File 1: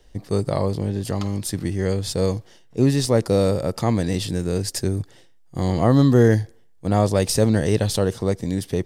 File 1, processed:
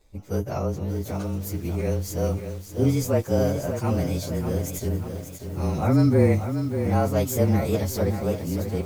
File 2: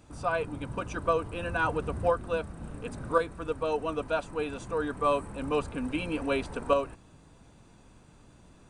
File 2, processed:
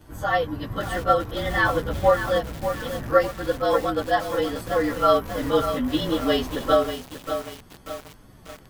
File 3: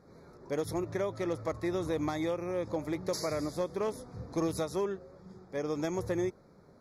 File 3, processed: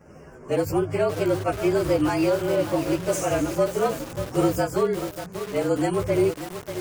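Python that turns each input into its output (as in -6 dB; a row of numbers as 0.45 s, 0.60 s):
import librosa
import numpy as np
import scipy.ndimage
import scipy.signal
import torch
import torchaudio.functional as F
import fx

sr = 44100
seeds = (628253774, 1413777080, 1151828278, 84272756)

y = fx.partial_stretch(x, sr, pct=110)
y = fx.echo_crushed(y, sr, ms=588, feedback_pct=55, bits=7, wet_db=-8)
y = y * 10.0 ** (-24 / 20.0) / np.sqrt(np.mean(np.square(y)))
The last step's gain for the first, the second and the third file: -2.5 dB, +9.0 dB, +12.0 dB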